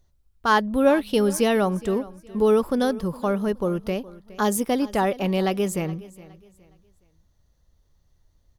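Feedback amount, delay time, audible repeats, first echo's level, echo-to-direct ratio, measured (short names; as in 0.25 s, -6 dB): 31%, 0.416 s, 2, -19.5 dB, -19.0 dB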